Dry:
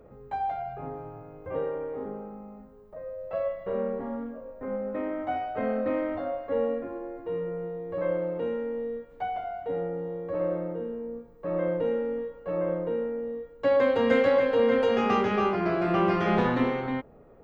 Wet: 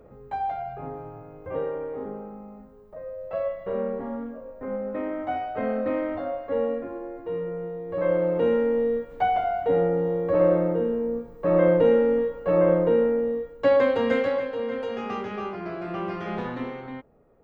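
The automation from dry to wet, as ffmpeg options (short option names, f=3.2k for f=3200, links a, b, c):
-af "volume=9dB,afade=t=in:st=7.86:d=0.69:silence=0.421697,afade=t=out:st=13.11:d=0.77:silence=0.421697,afade=t=out:st=13.88:d=0.66:silence=0.375837"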